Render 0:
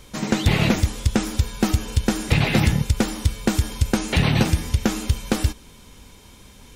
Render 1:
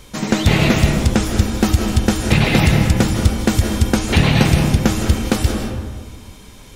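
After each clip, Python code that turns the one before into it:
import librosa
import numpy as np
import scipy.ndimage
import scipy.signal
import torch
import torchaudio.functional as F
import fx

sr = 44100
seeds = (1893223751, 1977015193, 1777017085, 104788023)

y = fx.rev_freeverb(x, sr, rt60_s=1.6, hf_ratio=0.4, predelay_ms=120, drr_db=3.0)
y = y * 10.0 ** (4.0 / 20.0)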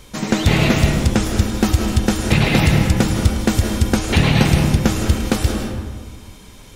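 y = x + 10.0 ** (-13.5 / 20.0) * np.pad(x, (int(107 * sr / 1000.0), 0))[:len(x)]
y = y * 10.0 ** (-1.0 / 20.0)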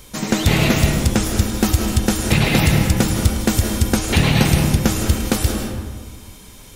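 y = fx.high_shelf(x, sr, hz=8400.0, db=11.0)
y = y * 10.0 ** (-1.0 / 20.0)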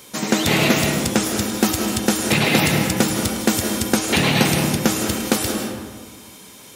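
y = scipy.signal.sosfilt(scipy.signal.butter(2, 200.0, 'highpass', fs=sr, output='sos'), x)
y = y * 10.0 ** (1.5 / 20.0)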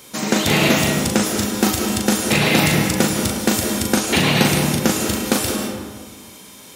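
y = fx.doubler(x, sr, ms=39.0, db=-5)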